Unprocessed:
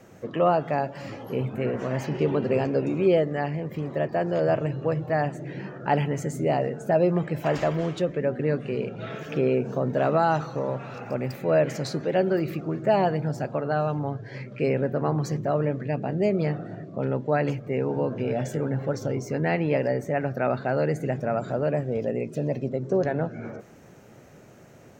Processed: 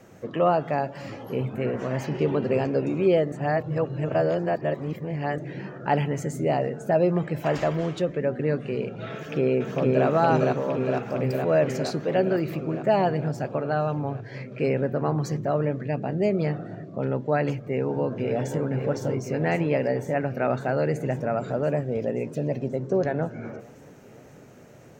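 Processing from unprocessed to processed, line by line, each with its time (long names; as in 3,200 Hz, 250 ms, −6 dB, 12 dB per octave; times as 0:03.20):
0:03.32–0:05.38: reverse
0:09.14–0:10.06: delay throw 460 ms, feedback 75%, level −1.5 dB
0:17.59–0:18.62: delay throw 530 ms, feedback 80%, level −8.5 dB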